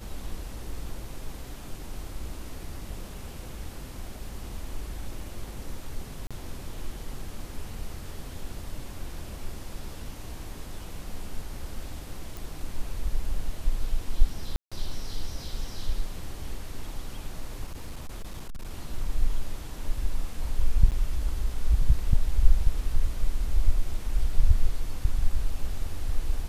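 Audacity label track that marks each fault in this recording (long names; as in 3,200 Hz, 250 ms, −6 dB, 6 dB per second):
6.270000	6.310000	drop-out 36 ms
12.370000	12.370000	click
14.560000	14.720000	drop-out 156 ms
17.670000	18.710000	clipping −31 dBFS
20.910000	20.920000	drop-out 8.4 ms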